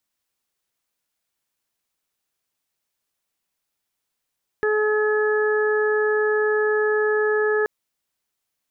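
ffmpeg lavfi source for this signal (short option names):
-f lavfi -i "aevalsrc='0.119*sin(2*PI*426*t)+0.0237*sin(2*PI*852*t)+0.0299*sin(2*PI*1278*t)+0.0596*sin(2*PI*1704*t)':d=3.03:s=44100"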